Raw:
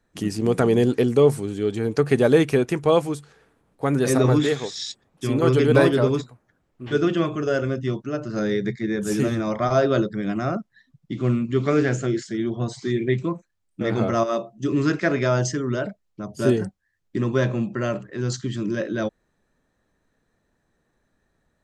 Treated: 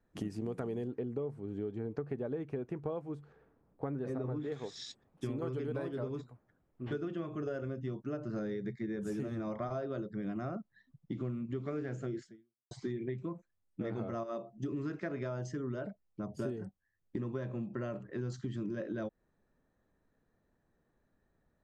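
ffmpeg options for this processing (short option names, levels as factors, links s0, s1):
-filter_complex "[0:a]asettb=1/sr,asplit=3[s0][s1][s2];[s0]atrim=end=0.874[s3];[s1]atrim=start=0.87:end=4.52,asetpts=PTS-STARTPTS,afade=t=in:d=0.004:c=qsin,afade=t=out:st=3.646:d=0.004:c=qsin,lowpass=f=1500:p=1[s4];[s2]atrim=start=4.516[s5];[s3][s4]acrossfade=d=0.004:c1=hsin:c2=qsin[s6];[s6][s5]acrossfade=d=0.004:c1=qsin:c2=hsin,asplit=2[s7][s8];[s7]atrim=end=12.71,asetpts=PTS-STARTPTS,afade=t=out:st=12.24:d=0.47:c=exp[s9];[s8]atrim=start=12.71,asetpts=PTS-STARTPTS,afade=t=in:d=0.004:c=hsin[s10];[s9][s10]concat=n=2:v=0:a=1,highshelf=f=2200:g=-12,acompressor=threshold=0.0355:ratio=12,volume=0.562"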